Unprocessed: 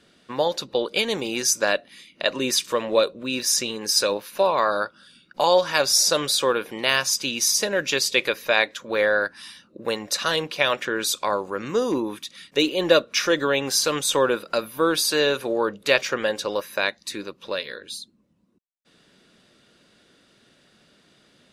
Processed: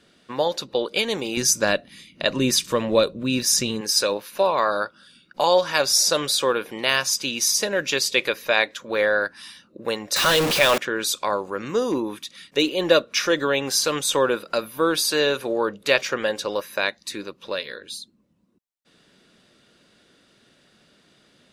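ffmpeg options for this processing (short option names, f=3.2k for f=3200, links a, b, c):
-filter_complex "[0:a]asettb=1/sr,asplit=3[a][b][c];[a]atrim=end=1.374[d];[b]atrim=start=1.37:end=3.81,asetpts=PTS-STARTPTS,afade=t=in:d=0.004:c=qsin,afade=t=out:st=2.436:d=0.004:c=qsin,bass=f=250:g=13,treble=f=4k:g=2[e];[c]atrim=start=3.806[f];[d][e]acrossfade=d=0.004:c1=hsin:c2=qsin[g];[g][f]acrossfade=d=0.004:c1=qsin:c2=hsin,asettb=1/sr,asplit=3[h][i][j];[h]atrim=end=10.164[k];[i]atrim=start=10.16:end=10.78,asetpts=PTS-STARTPTS,afade=t=in:d=0.004:c=qsin,afade=t=out:st=0.616:d=0.004:c=qsin,aeval=exprs='val(0)+0.5*0.133*sgn(val(0))':c=same[l];[j]atrim=start=10.776[m];[k][l]acrossfade=d=0.004:c1=hsin:c2=qsin[n];[n][m]acrossfade=d=0.004:c1=qsin:c2=hsin"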